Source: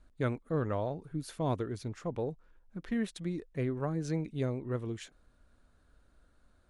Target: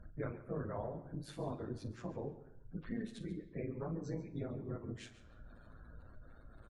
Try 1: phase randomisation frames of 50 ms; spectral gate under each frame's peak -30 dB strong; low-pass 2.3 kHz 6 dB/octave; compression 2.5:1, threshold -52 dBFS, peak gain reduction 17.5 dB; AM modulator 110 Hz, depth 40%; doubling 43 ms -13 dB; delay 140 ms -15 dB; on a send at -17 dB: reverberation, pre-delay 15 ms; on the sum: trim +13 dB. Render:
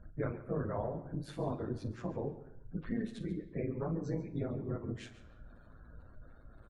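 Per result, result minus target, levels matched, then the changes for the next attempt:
compression: peak gain reduction -5 dB; 4 kHz band -3.5 dB
change: compression 2.5:1, threshold -60 dBFS, peak gain reduction 22 dB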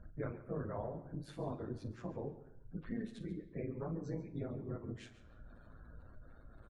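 4 kHz band -3.5 dB
change: low-pass 4.9 kHz 6 dB/octave

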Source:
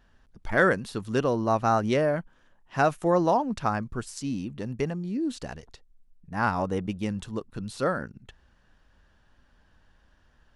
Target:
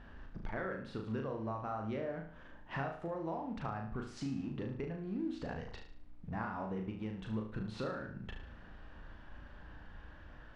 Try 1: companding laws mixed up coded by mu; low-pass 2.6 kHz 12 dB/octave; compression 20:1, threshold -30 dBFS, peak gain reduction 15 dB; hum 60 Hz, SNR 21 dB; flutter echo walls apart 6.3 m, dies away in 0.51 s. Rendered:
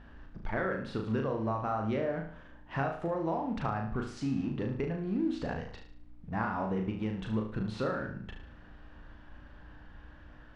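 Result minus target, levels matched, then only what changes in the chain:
compression: peak gain reduction -7 dB
change: compression 20:1, threshold -37.5 dBFS, peak gain reduction 22.5 dB

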